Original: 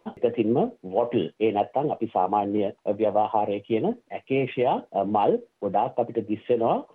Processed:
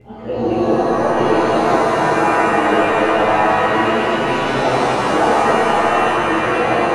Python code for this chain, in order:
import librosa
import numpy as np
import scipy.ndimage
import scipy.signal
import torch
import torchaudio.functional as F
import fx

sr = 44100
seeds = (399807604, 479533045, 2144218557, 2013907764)

y = fx.local_reverse(x, sr, ms=183.0)
y = fx.add_hum(y, sr, base_hz=60, snr_db=25)
y = fx.rev_shimmer(y, sr, seeds[0], rt60_s=3.4, semitones=7, shimmer_db=-2, drr_db=-11.5)
y = y * librosa.db_to_amplitude(-5.5)